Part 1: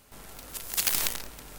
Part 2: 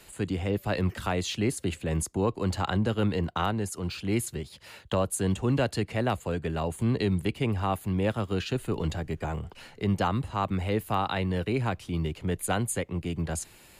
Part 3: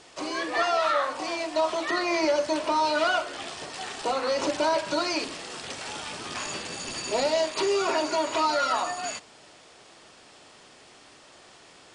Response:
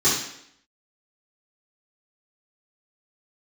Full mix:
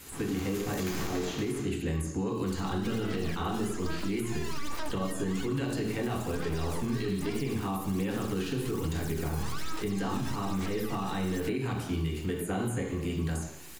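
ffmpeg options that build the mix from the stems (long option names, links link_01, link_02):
-filter_complex "[0:a]volume=3dB,asplit=2[link_01][link_02];[link_02]volume=-12.5dB[link_03];[1:a]volume=-3.5dB,asplit=3[link_04][link_05][link_06];[link_05]volume=-14dB[link_07];[2:a]aeval=exprs='abs(val(0))':channel_layout=same,aphaser=in_gain=1:out_gain=1:delay=1.2:decay=0.59:speed=1.2:type=sinusoidal,adelay=2300,volume=-2.5dB[link_08];[link_06]apad=whole_len=628172[link_09];[link_08][link_09]sidechaincompress=threshold=-35dB:ratio=8:attack=16:release=734[link_10];[link_04][link_10]amix=inputs=2:normalize=0,aemphasis=mode=production:type=50kf,alimiter=limit=-22dB:level=0:latency=1,volume=0dB[link_11];[3:a]atrim=start_sample=2205[link_12];[link_03][link_07]amix=inputs=2:normalize=0[link_13];[link_13][link_12]afir=irnorm=-1:irlink=0[link_14];[link_01][link_11][link_14]amix=inputs=3:normalize=0,acrossover=split=950|2600[link_15][link_16][link_17];[link_15]acompressor=threshold=-26dB:ratio=4[link_18];[link_16]acompressor=threshold=-42dB:ratio=4[link_19];[link_17]acompressor=threshold=-44dB:ratio=4[link_20];[link_18][link_19][link_20]amix=inputs=3:normalize=0,alimiter=limit=-22.5dB:level=0:latency=1:release=75"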